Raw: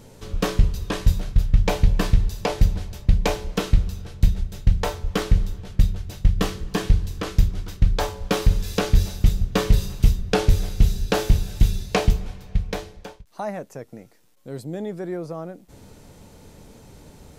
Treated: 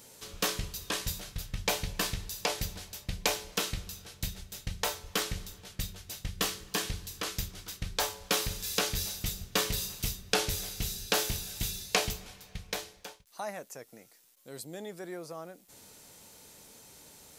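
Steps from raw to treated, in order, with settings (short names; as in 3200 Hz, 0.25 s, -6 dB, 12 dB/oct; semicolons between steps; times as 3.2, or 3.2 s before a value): tilt +3.5 dB/oct; gain -6.5 dB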